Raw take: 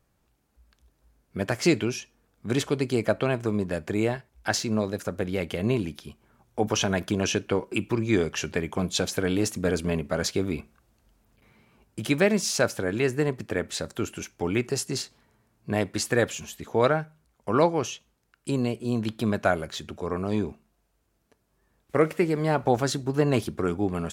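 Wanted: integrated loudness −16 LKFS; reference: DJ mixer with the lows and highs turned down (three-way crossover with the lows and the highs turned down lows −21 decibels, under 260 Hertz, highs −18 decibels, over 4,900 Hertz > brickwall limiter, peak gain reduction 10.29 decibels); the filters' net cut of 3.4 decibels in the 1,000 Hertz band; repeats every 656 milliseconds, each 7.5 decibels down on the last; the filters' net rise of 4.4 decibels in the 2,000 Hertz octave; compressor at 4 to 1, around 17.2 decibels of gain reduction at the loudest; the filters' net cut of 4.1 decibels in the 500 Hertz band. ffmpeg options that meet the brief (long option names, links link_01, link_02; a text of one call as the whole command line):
ffmpeg -i in.wav -filter_complex "[0:a]equalizer=frequency=500:width_type=o:gain=-3,equalizer=frequency=1000:width_type=o:gain=-6,equalizer=frequency=2000:width_type=o:gain=8,acompressor=threshold=-39dB:ratio=4,acrossover=split=260 4900:gain=0.0891 1 0.126[link_01][link_02][link_03];[link_01][link_02][link_03]amix=inputs=3:normalize=0,aecho=1:1:656|1312|1968|2624|3280:0.422|0.177|0.0744|0.0312|0.0131,volume=30dB,alimiter=limit=-3.5dB:level=0:latency=1" out.wav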